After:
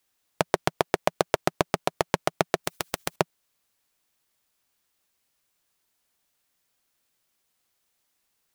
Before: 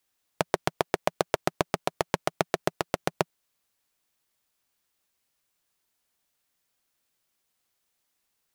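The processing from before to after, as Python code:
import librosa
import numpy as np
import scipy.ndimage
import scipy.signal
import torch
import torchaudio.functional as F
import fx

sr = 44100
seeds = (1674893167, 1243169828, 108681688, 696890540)

y = fx.spectral_comp(x, sr, ratio=2.0, at=(2.64, 3.16))
y = y * 10.0 ** (2.5 / 20.0)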